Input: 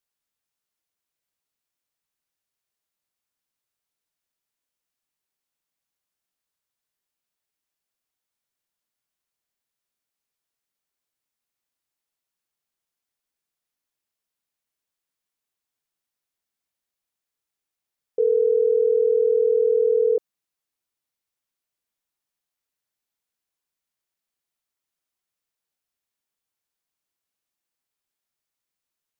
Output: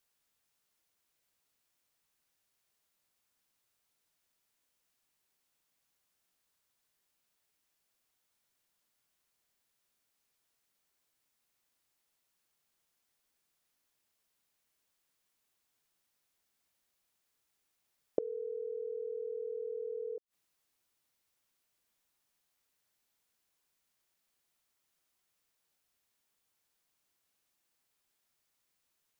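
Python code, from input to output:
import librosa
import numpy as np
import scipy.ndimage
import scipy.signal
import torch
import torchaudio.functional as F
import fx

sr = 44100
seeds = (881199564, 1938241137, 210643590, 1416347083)

y = fx.gate_flip(x, sr, shuts_db=-21.0, range_db=-26)
y = y * librosa.db_to_amplitude(5.5)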